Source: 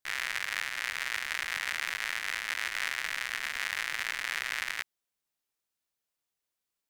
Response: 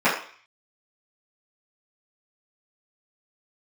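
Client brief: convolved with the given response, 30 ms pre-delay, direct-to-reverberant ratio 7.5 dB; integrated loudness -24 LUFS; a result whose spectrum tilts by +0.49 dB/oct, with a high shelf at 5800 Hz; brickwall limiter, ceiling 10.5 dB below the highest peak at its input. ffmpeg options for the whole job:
-filter_complex "[0:a]highshelf=f=5.8k:g=7,alimiter=limit=-21dB:level=0:latency=1,asplit=2[a][b];[1:a]atrim=start_sample=2205,adelay=30[c];[b][c]afir=irnorm=-1:irlink=0,volume=-27.5dB[d];[a][d]amix=inputs=2:normalize=0,volume=14dB"

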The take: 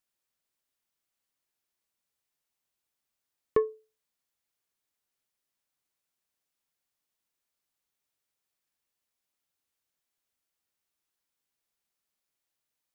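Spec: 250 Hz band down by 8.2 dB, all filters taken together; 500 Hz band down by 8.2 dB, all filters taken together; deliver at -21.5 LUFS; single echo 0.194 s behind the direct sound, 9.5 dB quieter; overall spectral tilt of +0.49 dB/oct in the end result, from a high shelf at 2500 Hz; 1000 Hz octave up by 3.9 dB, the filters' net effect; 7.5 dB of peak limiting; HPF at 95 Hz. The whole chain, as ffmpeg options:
-af "highpass=95,equalizer=f=250:t=o:g=-9,equalizer=f=500:t=o:g=-7.5,equalizer=f=1k:t=o:g=5,highshelf=f=2.5k:g=4.5,alimiter=limit=-23dB:level=0:latency=1,aecho=1:1:194:0.335,volume=20.5dB"

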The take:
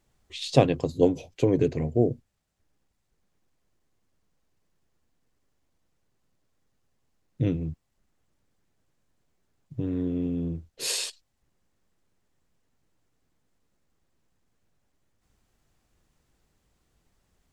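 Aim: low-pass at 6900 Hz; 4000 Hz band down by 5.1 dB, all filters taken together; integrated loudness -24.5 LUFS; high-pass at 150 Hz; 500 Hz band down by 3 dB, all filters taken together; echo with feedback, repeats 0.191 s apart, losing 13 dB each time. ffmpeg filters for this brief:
-af "highpass=150,lowpass=6.9k,equalizer=f=500:t=o:g=-3.5,equalizer=f=4k:t=o:g=-5.5,aecho=1:1:191|382|573:0.224|0.0493|0.0108,volume=5dB"

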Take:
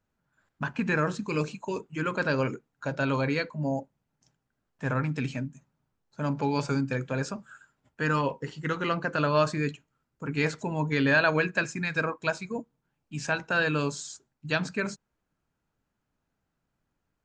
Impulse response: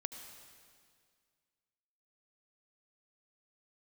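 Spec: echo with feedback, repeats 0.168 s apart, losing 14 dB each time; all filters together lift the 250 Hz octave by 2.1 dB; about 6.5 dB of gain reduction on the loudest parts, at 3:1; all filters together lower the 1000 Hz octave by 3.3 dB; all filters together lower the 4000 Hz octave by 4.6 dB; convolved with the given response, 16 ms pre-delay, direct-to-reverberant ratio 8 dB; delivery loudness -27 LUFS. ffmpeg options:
-filter_complex "[0:a]equalizer=f=250:t=o:g=3,equalizer=f=1k:t=o:g=-4,equalizer=f=4k:t=o:g=-5.5,acompressor=threshold=-28dB:ratio=3,aecho=1:1:168|336:0.2|0.0399,asplit=2[a][b];[1:a]atrim=start_sample=2205,adelay=16[c];[b][c]afir=irnorm=-1:irlink=0,volume=-6.5dB[d];[a][d]amix=inputs=2:normalize=0,volume=6dB"

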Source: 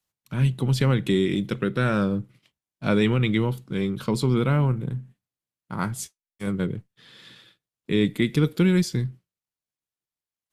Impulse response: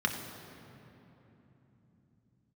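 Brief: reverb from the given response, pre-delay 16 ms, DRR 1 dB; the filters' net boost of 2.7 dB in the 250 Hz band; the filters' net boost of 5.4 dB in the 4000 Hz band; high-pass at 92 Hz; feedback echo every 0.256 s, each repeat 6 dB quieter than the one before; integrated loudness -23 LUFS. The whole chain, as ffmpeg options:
-filter_complex "[0:a]highpass=92,equalizer=f=250:t=o:g=4,equalizer=f=4k:t=o:g=6.5,aecho=1:1:256|512|768|1024|1280|1536:0.501|0.251|0.125|0.0626|0.0313|0.0157,asplit=2[a][b];[1:a]atrim=start_sample=2205,adelay=16[c];[b][c]afir=irnorm=-1:irlink=0,volume=-9.5dB[d];[a][d]amix=inputs=2:normalize=0,volume=-5dB"

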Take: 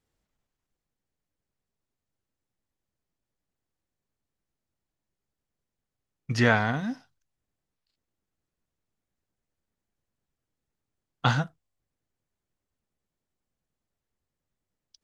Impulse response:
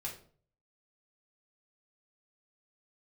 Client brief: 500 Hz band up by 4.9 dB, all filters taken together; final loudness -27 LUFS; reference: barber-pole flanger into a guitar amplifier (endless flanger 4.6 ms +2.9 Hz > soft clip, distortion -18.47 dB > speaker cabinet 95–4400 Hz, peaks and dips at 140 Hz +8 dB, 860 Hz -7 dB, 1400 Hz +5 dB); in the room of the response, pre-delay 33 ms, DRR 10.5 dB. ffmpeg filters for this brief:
-filter_complex "[0:a]equalizer=f=500:t=o:g=6.5,asplit=2[a][b];[1:a]atrim=start_sample=2205,adelay=33[c];[b][c]afir=irnorm=-1:irlink=0,volume=-10dB[d];[a][d]amix=inputs=2:normalize=0,asplit=2[e][f];[f]adelay=4.6,afreqshift=2.9[g];[e][g]amix=inputs=2:normalize=1,asoftclip=threshold=-12.5dB,highpass=95,equalizer=f=140:t=q:w=4:g=8,equalizer=f=860:t=q:w=4:g=-7,equalizer=f=1.4k:t=q:w=4:g=5,lowpass=f=4.4k:w=0.5412,lowpass=f=4.4k:w=1.3066,volume=-0.5dB"

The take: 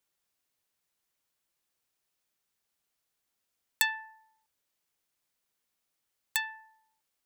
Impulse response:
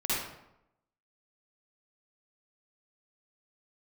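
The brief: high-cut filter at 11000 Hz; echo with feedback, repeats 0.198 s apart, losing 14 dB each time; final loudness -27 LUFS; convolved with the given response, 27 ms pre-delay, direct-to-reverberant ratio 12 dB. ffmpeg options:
-filter_complex "[0:a]lowpass=11k,aecho=1:1:198|396:0.2|0.0399,asplit=2[a][b];[1:a]atrim=start_sample=2205,adelay=27[c];[b][c]afir=irnorm=-1:irlink=0,volume=-20.5dB[d];[a][d]amix=inputs=2:normalize=0,volume=6dB"

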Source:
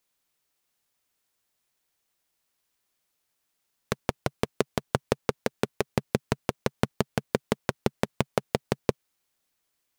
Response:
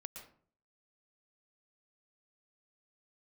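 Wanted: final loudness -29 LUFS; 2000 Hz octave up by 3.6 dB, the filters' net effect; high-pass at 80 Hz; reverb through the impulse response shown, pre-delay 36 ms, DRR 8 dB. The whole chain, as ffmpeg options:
-filter_complex "[0:a]highpass=80,equalizer=f=2k:t=o:g=4.5,asplit=2[a][b];[1:a]atrim=start_sample=2205,adelay=36[c];[b][c]afir=irnorm=-1:irlink=0,volume=-4dB[d];[a][d]amix=inputs=2:normalize=0,volume=1dB"

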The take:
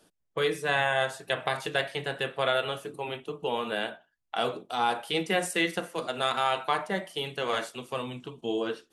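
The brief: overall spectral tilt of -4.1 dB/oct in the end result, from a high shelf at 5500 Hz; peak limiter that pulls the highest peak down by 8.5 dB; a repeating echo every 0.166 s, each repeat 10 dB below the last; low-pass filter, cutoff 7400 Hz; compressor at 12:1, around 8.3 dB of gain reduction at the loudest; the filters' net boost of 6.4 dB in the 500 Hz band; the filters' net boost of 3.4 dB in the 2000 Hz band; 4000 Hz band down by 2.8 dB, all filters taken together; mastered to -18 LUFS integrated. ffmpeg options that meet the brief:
-af "lowpass=7.4k,equalizer=f=500:t=o:g=7.5,equalizer=f=2k:t=o:g=5,equalizer=f=4k:t=o:g=-9,highshelf=f=5.5k:g=8,acompressor=threshold=-25dB:ratio=12,alimiter=limit=-21.5dB:level=0:latency=1,aecho=1:1:166|332|498|664:0.316|0.101|0.0324|0.0104,volume=15dB"

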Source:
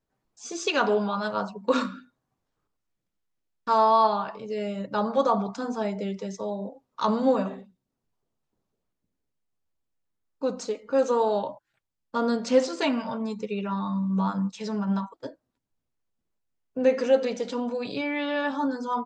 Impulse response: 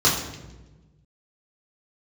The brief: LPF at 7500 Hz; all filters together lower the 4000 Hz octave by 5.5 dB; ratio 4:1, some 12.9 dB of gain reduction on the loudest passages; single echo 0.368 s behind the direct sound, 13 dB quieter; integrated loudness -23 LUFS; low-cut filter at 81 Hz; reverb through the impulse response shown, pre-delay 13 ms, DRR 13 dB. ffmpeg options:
-filter_complex "[0:a]highpass=81,lowpass=7.5k,equalizer=f=4k:t=o:g=-7,acompressor=threshold=-31dB:ratio=4,aecho=1:1:368:0.224,asplit=2[a][b];[1:a]atrim=start_sample=2205,adelay=13[c];[b][c]afir=irnorm=-1:irlink=0,volume=-31dB[d];[a][d]amix=inputs=2:normalize=0,volume=11.5dB"

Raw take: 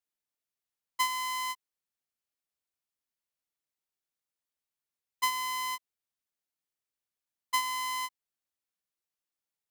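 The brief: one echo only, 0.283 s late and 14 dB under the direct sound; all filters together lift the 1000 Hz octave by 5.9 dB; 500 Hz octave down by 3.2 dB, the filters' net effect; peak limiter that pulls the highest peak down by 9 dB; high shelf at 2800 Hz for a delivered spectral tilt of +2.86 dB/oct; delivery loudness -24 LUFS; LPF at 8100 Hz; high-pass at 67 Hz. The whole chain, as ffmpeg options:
-af "highpass=67,lowpass=8.1k,equalizer=f=500:t=o:g=-5.5,equalizer=f=1k:t=o:g=7.5,highshelf=f=2.8k:g=-5,alimiter=level_in=1.5dB:limit=-24dB:level=0:latency=1,volume=-1.5dB,aecho=1:1:283:0.2,volume=7.5dB"

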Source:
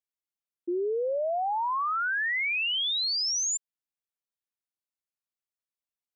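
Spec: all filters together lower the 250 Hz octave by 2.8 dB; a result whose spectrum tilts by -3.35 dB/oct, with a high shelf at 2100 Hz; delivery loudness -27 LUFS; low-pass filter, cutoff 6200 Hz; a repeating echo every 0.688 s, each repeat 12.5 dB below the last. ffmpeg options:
-af "lowpass=6.2k,equalizer=f=250:t=o:g=-5.5,highshelf=f=2.1k:g=-7.5,aecho=1:1:688|1376|2064:0.237|0.0569|0.0137,volume=4dB"

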